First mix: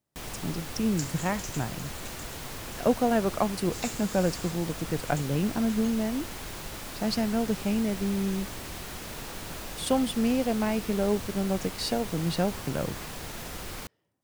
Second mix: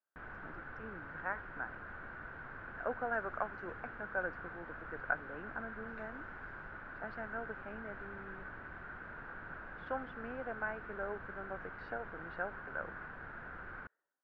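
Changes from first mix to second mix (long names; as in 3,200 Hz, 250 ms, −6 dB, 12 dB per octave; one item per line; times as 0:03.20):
speech: add high-pass filter 460 Hz 12 dB per octave
second sound: entry +2.15 s
master: add transistor ladder low-pass 1,600 Hz, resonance 80%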